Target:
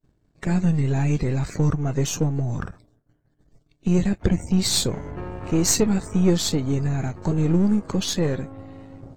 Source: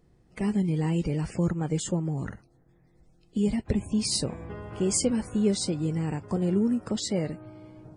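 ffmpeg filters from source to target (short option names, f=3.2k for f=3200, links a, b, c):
-af "aeval=exprs='if(lt(val(0),0),0.447*val(0),val(0))':c=same,agate=range=-33dB:threshold=-55dB:ratio=3:detection=peak,asetrate=38367,aresample=44100,volume=8.5dB"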